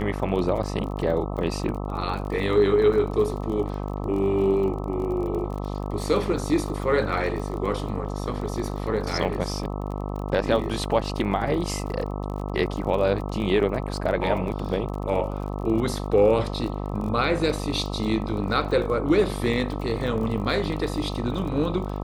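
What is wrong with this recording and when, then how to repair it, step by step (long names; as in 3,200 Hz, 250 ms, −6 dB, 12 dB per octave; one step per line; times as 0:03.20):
mains buzz 50 Hz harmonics 26 −30 dBFS
surface crackle 33 per second −32 dBFS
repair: click removal
hum removal 50 Hz, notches 26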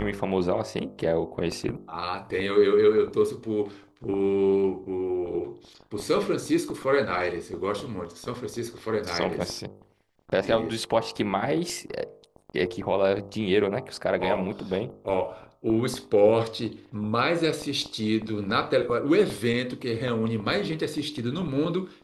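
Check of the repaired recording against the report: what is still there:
none of them is left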